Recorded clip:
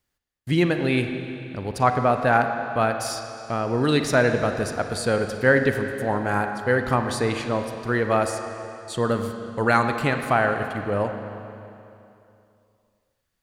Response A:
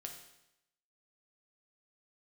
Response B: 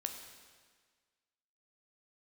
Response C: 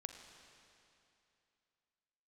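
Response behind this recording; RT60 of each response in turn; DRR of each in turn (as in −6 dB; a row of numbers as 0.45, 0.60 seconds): C; 0.85, 1.6, 2.8 seconds; 2.0, 4.5, 6.0 decibels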